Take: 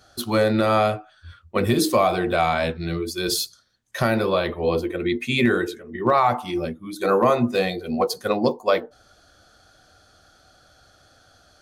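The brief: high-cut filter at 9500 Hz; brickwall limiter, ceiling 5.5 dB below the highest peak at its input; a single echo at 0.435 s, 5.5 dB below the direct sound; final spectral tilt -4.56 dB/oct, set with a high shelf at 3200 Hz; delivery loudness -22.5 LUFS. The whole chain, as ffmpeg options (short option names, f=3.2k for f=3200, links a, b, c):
-af "lowpass=9.5k,highshelf=f=3.2k:g=-4,alimiter=limit=-13.5dB:level=0:latency=1,aecho=1:1:435:0.531,volume=2dB"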